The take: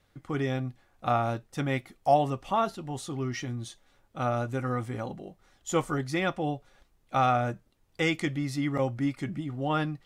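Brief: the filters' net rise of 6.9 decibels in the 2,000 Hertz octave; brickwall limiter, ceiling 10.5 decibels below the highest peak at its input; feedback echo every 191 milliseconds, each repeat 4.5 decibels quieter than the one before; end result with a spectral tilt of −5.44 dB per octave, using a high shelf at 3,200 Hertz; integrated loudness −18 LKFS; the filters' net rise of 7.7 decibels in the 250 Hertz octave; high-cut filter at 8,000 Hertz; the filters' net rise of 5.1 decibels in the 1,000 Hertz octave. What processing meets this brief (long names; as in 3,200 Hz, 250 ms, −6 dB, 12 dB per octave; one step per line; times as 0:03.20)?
low-pass filter 8,000 Hz
parametric band 250 Hz +9 dB
parametric band 1,000 Hz +5 dB
parametric band 2,000 Hz +5 dB
high-shelf EQ 3,200 Hz +5.5 dB
brickwall limiter −16.5 dBFS
repeating echo 191 ms, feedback 60%, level −4.5 dB
level +8.5 dB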